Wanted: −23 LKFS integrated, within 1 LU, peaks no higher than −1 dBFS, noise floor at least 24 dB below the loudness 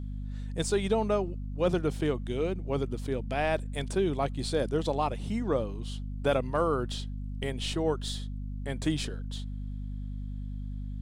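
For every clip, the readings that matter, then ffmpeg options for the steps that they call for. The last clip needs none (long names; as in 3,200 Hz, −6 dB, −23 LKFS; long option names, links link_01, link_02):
mains hum 50 Hz; hum harmonics up to 250 Hz; level of the hum −33 dBFS; integrated loudness −31.5 LKFS; sample peak −15.0 dBFS; target loudness −23.0 LKFS
→ -af "bandreject=frequency=50:width_type=h:width=4,bandreject=frequency=100:width_type=h:width=4,bandreject=frequency=150:width_type=h:width=4,bandreject=frequency=200:width_type=h:width=4,bandreject=frequency=250:width_type=h:width=4"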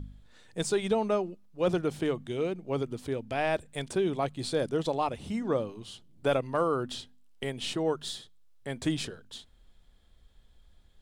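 mains hum none found; integrated loudness −31.5 LKFS; sample peak −16.5 dBFS; target loudness −23.0 LKFS
→ -af "volume=8.5dB"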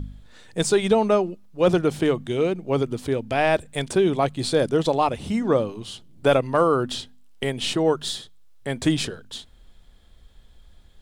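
integrated loudness −23.0 LKFS; sample peak −8.0 dBFS; background noise floor −51 dBFS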